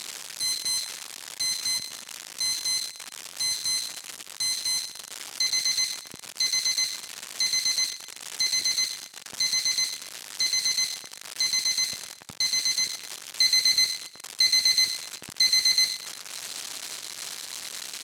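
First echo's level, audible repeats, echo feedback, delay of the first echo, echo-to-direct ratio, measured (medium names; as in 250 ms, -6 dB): -14.0 dB, 3, 36%, 119 ms, -13.5 dB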